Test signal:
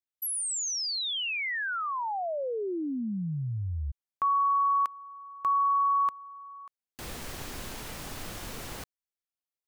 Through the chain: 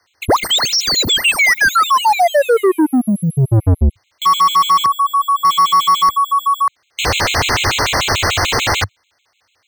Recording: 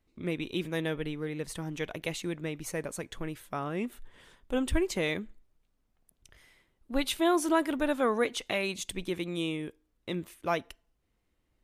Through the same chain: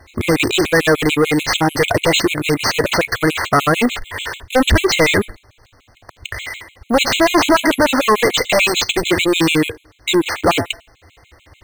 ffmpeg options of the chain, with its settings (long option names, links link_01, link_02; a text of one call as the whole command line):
ffmpeg -i in.wav -filter_complex "[0:a]acrusher=samples=4:mix=1:aa=0.000001,aeval=exprs='0.237*(cos(1*acos(clip(val(0)/0.237,-1,1)))-cos(1*PI/2))+0.0133*(cos(6*acos(clip(val(0)/0.237,-1,1)))-cos(6*PI/2))+0.00668*(cos(8*acos(clip(val(0)/0.237,-1,1)))-cos(8*PI/2))':channel_layout=same,lowshelf=frequency=130:width_type=q:width=3:gain=9.5,asplit=2[link_01][link_02];[link_02]highpass=frequency=720:poles=1,volume=43dB,asoftclip=type=tanh:threshold=-4dB[link_03];[link_01][link_03]amix=inputs=2:normalize=0,lowpass=frequency=4000:poles=1,volume=-6dB,afftfilt=real='re*gt(sin(2*PI*6.8*pts/sr)*(1-2*mod(floor(b*sr/1024/2100),2)),0)':imag='im*gt(sin(2*PI*6.8*pts/sr)*(1-2*mod(floor(b*sr/1024/2100),2)),0)':win_size=1024:overlap=0.75,volume=1.5dB" out.wav